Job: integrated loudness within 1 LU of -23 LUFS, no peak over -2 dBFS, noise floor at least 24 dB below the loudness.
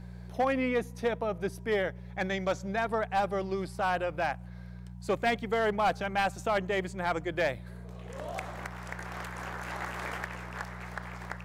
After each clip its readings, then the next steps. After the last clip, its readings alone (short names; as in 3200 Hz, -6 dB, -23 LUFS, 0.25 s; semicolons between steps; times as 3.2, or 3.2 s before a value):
clipped 0.5%; flat tops at -21.0 dBFS; hum 60 Hz; harmonics up to 180 Hz; hum level -41 dBFS; loudness -32.5 LUFS; peak -21.0 dBFS; loudness target -23.0 LUFS
-> clip repair -21 dBFS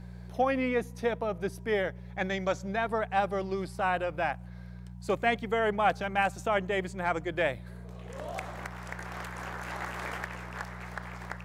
clipped 0.0%; hum 60 Hz; harmonics up to 180 Hz; hum level -41 dBFS
-> de-hum 60 Hz, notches 3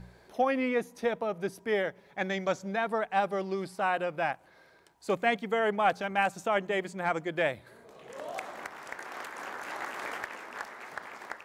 hum none; loudness -31.5 LUFS; peak -12.0 dBFS; loudness target -23.0 LUFS
-> gain +8.5 dB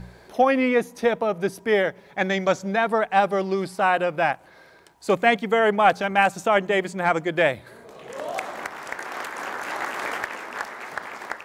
loudness -23.0 LUFS; peak -3.5 dBFS; noise floor -51 dBFS